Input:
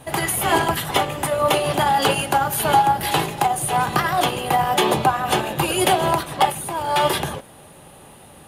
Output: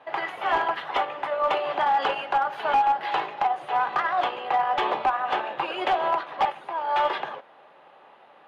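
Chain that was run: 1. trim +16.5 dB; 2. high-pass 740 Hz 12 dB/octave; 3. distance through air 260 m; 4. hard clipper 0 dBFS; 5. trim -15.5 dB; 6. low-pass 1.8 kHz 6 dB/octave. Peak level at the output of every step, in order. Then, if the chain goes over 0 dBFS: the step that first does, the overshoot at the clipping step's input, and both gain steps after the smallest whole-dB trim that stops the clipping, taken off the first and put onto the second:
+12.0 dBFS, +12.5 dBFS, +9.5 dBFS, 0.0 dBFS, -15.5 dBFS, -15.5 dBFS; step 1, 9.5 dB; step 1 +6.5 dB, step 5 -5.5 dB

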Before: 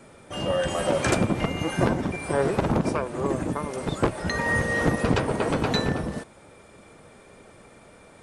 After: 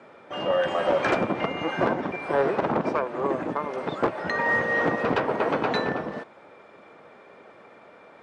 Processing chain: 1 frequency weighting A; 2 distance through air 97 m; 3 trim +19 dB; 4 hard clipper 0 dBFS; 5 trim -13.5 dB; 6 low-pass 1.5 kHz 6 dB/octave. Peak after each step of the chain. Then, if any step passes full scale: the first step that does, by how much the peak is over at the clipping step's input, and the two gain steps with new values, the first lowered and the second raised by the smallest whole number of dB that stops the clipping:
-9.5 dBFS, -10.5 dBFS, +8.5 dBFS, 0.0 dBFS, -13.5 dBFS, -13.5 dBFS; step 3, 8.5 dB; step 3 +10 dB, step 5 -4.5 dB

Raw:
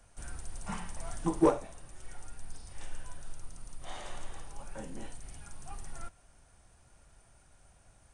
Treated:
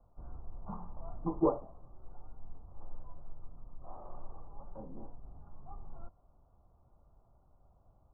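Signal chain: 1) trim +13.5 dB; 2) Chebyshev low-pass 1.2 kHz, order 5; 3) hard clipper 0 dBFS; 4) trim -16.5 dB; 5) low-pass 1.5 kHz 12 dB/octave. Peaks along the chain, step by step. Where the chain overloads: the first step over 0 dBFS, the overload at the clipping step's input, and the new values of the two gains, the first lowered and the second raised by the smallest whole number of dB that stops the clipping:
-2.0 dBFS, -1.5 dBFS, -1.5 dBFS, -18.0 dBFS, -18.5 dBFS; nothing clips

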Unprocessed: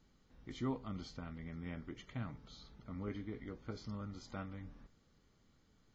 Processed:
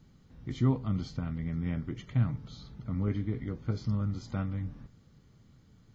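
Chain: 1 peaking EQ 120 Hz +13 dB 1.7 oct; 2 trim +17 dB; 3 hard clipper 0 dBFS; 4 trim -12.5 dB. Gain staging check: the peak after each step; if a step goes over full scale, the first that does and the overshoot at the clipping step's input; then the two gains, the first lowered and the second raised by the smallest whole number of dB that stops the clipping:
-19.5 dBFS, -2.5 dBFS, -2.5 dBFS, -15.0 dBFS; nothing clips

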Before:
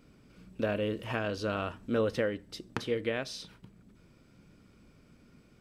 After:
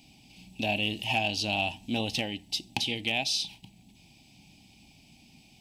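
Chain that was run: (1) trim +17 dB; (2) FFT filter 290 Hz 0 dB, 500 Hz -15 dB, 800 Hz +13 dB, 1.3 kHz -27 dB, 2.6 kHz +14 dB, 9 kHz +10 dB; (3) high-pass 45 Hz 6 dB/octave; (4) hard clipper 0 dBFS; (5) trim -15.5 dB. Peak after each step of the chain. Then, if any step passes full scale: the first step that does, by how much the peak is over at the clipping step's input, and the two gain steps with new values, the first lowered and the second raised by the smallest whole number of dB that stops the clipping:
+2.5 dBFS, +7.0 dBFS, +7.0 dBFS, 0.0 dBFS, -15.5 dBFS; step 1, 7.0 dB; step 1 +10 dB, step 5 -8.5 dB

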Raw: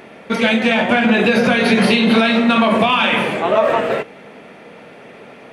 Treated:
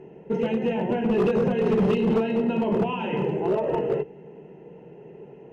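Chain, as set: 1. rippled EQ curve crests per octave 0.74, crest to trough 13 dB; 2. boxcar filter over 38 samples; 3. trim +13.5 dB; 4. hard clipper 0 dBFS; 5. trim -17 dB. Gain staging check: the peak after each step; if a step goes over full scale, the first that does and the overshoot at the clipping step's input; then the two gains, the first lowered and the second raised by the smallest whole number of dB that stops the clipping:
+0.5 dBFS, -4.5 dBFS, +9.0 dBFS, 0.0 dBFS, -17.0 dBFS; step 1, 9.0 dB; step 3 +4.5 dB, step 5 -8 dB

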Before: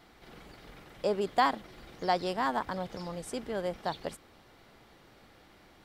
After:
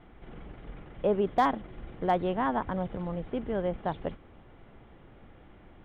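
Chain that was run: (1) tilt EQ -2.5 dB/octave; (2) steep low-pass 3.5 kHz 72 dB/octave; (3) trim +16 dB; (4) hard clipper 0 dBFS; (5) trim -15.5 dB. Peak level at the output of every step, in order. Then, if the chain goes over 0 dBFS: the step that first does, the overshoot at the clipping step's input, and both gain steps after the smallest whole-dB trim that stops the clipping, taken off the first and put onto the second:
-12.0 dBFS, -12.5 dBFS, +3.5 dBFS, 0.0 dBFS, -15.5 dBFS; step 3, 3.5 dB; step 3 +12 dB, step 5 -11.5 dB

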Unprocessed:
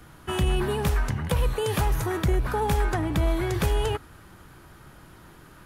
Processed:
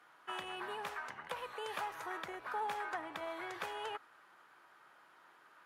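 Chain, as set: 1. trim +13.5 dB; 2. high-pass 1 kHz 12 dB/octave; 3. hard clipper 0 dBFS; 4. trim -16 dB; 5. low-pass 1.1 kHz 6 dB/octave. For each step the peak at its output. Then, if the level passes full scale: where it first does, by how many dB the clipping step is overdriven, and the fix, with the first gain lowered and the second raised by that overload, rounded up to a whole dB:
-2.0 dBFS, -3.0 dBFS, -3.0 dBFS, -19.0 dBFS, -25.5 dBFS; nothing clips

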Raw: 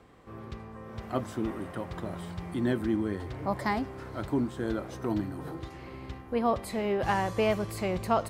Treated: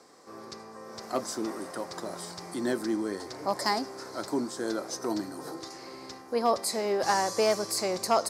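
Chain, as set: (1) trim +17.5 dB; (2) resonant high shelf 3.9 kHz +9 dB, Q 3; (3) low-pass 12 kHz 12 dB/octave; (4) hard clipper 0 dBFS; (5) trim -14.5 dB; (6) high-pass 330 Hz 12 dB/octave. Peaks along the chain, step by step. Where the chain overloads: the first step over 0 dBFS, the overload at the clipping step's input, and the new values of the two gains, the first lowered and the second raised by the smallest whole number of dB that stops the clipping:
+4.0 dBFS, +4.5 dBFS, +4.5 dBFS, 0.0 dBFS, -14.5 dBFS, -11.5 dBFS; step 1, 4.5 dB; step 1 +12.5 dB, step 5 -9.5 dB

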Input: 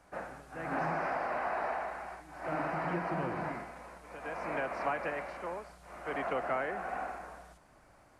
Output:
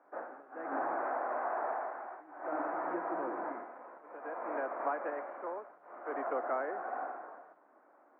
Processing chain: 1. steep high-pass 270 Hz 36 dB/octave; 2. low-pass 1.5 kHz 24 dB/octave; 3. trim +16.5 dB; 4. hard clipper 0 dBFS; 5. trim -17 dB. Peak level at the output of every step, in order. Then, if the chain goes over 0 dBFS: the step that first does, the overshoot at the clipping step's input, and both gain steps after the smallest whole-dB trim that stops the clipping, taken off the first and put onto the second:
-21.5 dBFS, -21.5 dBFS, -5.0 dBFS, -5.0 dBFS, -22.0 dBFS; nothing clips

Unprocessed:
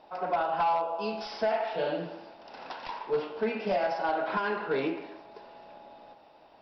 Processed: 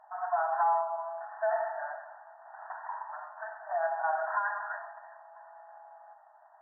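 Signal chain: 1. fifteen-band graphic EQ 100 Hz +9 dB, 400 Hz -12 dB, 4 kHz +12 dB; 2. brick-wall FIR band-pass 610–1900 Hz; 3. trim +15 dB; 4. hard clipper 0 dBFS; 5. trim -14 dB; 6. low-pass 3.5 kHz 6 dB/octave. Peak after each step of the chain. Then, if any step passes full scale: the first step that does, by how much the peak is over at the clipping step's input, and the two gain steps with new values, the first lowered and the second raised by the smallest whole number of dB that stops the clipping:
-19.5 dBFS, -20.0 dBFS, -5.0 dBFS, -5.0 dBFS, -19.0 dBFS, -19.5 dBFS; nothing clips

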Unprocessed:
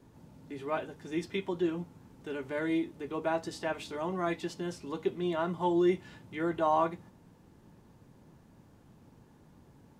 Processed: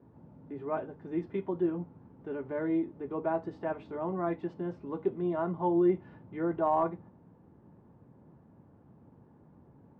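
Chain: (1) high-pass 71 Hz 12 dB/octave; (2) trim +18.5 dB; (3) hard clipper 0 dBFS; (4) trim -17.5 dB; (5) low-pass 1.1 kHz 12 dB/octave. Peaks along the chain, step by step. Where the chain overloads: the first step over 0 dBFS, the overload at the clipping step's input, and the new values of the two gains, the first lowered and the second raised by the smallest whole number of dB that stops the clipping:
-15.0 dBFS, +3.5 dBFS, 0.0 dBFS, -17.5 dBFS, -17.5 dBFS; step 2, 3.5 dB; step 2 +14.5 dB, step 4 -13.5 dB

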